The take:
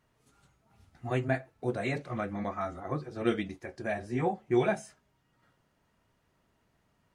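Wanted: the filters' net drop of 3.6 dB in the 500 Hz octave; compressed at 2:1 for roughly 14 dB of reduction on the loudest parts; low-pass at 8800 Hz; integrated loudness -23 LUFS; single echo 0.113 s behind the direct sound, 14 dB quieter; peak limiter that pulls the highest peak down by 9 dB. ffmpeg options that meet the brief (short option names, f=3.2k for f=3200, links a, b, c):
-af "lowpass=8.8k,equalizer=f=500:t=o:g=-5.5,acompressor=threshold=-51dB:ratio=2,alimiter=level_in=14dB:limit=-24dB:level=0:latency=1,volume=-14dB,aecho=1:1:113:0.2,volume=26dB"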